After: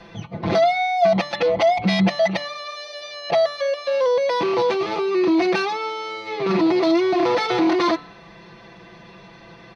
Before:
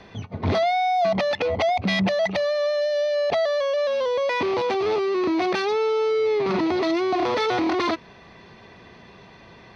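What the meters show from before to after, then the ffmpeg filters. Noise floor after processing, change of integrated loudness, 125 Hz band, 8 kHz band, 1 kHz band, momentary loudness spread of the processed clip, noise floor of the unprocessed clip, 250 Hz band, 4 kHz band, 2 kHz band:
-45 dBFS, +2.5 dB, +2.5 dB, no reading, +2.0 dB, 11 LU, -48 dBFS, +5.0 dB, +2.0 dB, +1.5 dB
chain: -af "aecho=1:1:5.9:0.98,bandreject=f=146:t=h:w=4,bandreject=f=292:t=h:w=4,bandreject=f=438:t=h:w=4,bandreject=f=584:t=h:w=4,bandreject=f=730:t=h:w=4,bandreject=f=876:t=h:w=4,bandreject=f=1022:t=h:w=4,bandreject=f=1168:t=h:w=4,bandreject=f=1314:t=h:w=4,bandreject=f=1460:t=h:w=4,bandreject=f=1606:t=h:w=4,bandreject=f=1752:t=h:w=4,bandreject=f=1898:t=h:w=4,bandreject=f=2044:t=h:w=4,bandreject=f=2190:t=h:w=4,bandreject=f=2336:t=h:w=4,bandreject=f=2482:t=h:w=4,bandreject=f=2628:t=h:w=4,bandreject=f=2774:t=h:w=4,bandreject=f=2920:t=h:w=4,bandreject=f=3066:t=h:w=4,bandreject=f=3212:t=h:w=4,bandreject=f=3358:t=h:w=4,bandreject=f=3504:t=h:w=4,bandreject=f=3650:t=h:w=4,bandreject=f=3796:t=h:w=4,bandreject=f=3942:t=h:w=4,bandreject=f=4088:t=h:w=4,bandreject=f=4234:t=h:w=4"

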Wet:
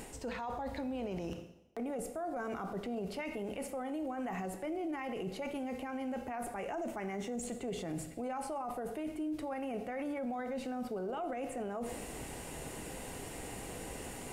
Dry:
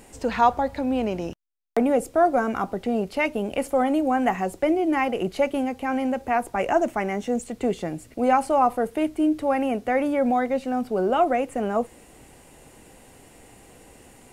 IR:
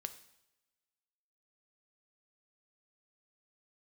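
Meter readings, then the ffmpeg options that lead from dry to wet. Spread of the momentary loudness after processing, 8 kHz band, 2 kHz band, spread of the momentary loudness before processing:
5 LU, -3.5 dB, -15.0 dB, 7 LU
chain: -filter_complex "[0:a]areverse,acompressor=threshold=0.0158:ratio=5,areverse[s0];[1:a]atrim=start_sample=2205[s1];[s0][s1]afir=irnorm=-1:irlink=0,alimiter=level_in=6.31:limit=0.0631:level=0:latency=1:release=22,volume=0.158,volume=2.66"

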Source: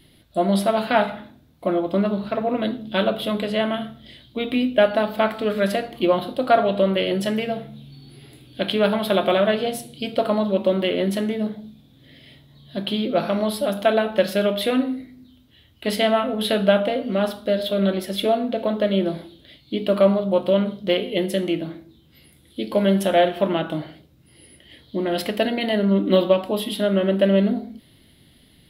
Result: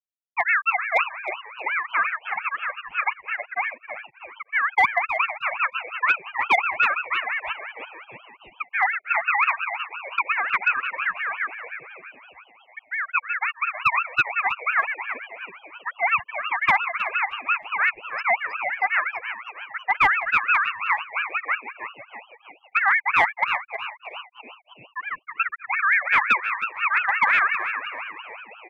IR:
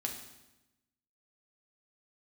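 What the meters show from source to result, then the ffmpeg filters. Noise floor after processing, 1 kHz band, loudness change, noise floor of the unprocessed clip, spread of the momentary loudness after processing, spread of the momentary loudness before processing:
-58 dBFS, +3.5 dB, -1.0 dB, -54 dBFS, 17 LU, 11 LU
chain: -filter_complex "[0:a]afftfilt=real='re*gte(hypot(re,im),0.708)':imag='im*gte(hypot(re,im),0.708)':win_size=1024:overlap=0.75,asplit=2[s0][s1];[s1]asplit=6[s2][s3][s4][s5][s6][s7];[s2]adelay=323,afreqshift=110,volume=0.282[s8];[s3]adelay=646,afreqshift=220,volume=0.146[s9];[s4]adelay=969,afreqshift=330,volume=0.0759[s10];[s5]adelay=1292,afreqshift=440,volume=0.0398[s11];[s6]adelay=1615,afreqshift=550,volume=0.0207[s12];[s7]adelay=1938,afreqshift=660,volume=0.0107[s13];[s8][s9][s10][s11][s12][s13]amix=inputs=6:normalize=0[s14];[s0][s14]amix=inputs=2:normalize=0,asoftclip=type=hard:threshold=0.251,asplit=2[s15][s16];[s16]aecho=0:1:313|626|939:0.178|0.0498|0.0139[s17];[s15][s17]amix=inputs=2:normalize=0,aeval=exprs='val(0)*sin(2*PI*1700*n/s+1700*0.2/5.7*sin(2*PI*5.7*n/s))':c=same,volume=1.26"

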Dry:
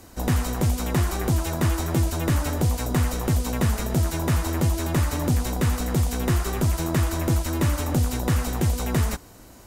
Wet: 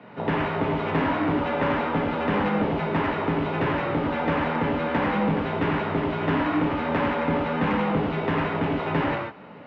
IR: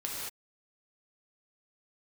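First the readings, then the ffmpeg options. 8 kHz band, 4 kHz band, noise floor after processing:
under -35 dB, -3.0 dB, -43 dBFS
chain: -filter_complex "[0:a]equalizer=f=1000:t=o:w=0.37:g=3,acontrast=36,highpass=f=260:t=q:w=0.5412,highpass=f=260:t=q:w=1.307,lowpass=f=3000:t=q:w=0.5176,lowpass=f=3000:t=q:w=0.7071,lowpass=f=3000:t=q:w=1.932,afreqshift=-88[s0];[1:a]atrim=start_sample=2205,afade=t=out:st=0.2:d=0.01,atrim=end_sample=9261[s1];[s0][s1]afir=irnorm=-1:irlink=0,asoftclip=type=tanh:threshold=0.2"

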